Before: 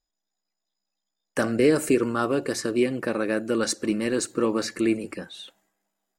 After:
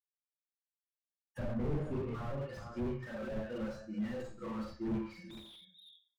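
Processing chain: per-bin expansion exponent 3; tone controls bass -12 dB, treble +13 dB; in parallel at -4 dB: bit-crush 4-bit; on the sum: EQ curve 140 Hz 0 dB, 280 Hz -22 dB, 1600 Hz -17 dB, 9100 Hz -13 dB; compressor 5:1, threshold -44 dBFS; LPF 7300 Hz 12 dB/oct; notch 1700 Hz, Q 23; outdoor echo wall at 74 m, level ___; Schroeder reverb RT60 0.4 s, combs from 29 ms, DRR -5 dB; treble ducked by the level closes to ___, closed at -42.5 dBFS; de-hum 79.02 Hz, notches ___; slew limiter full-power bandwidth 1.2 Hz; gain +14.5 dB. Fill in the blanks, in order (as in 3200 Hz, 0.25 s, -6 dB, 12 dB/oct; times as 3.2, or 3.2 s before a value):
-17 dB, 900 Hz, 2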